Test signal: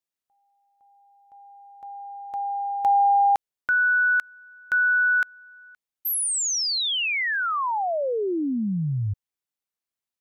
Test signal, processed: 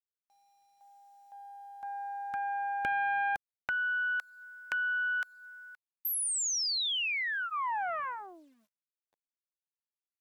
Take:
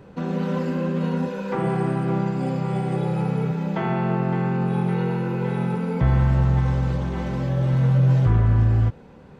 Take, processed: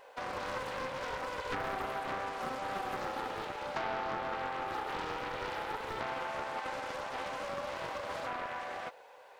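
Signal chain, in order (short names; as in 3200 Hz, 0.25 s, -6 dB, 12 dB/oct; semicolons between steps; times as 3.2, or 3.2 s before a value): steep high-pass 550 Hz 36 dB/oct; notch 1300 Hz, Q 7.3; dynamic EQ 1600 Hz, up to -4 dB, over -37 dBFS, Q 1.4; compressor 2:1, threshold -35 dBFS; bit-crush 12-bit; Doppler distortion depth 0.66 ms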